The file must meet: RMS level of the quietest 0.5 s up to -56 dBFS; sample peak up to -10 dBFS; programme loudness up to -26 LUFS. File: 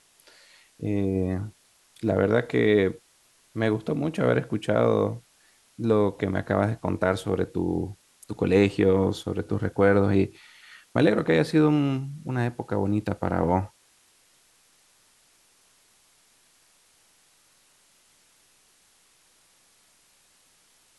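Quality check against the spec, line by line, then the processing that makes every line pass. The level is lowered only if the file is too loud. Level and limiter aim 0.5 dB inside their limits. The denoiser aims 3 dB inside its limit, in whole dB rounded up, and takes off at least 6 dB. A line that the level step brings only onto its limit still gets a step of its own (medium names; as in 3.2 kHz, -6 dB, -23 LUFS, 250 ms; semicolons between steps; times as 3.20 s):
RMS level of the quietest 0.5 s -62 dBFS: pass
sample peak -6.0 dBFS: fail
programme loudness -25.0 LUFS: fail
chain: trim -1.5 dB; peak limiter -10.5 dBFS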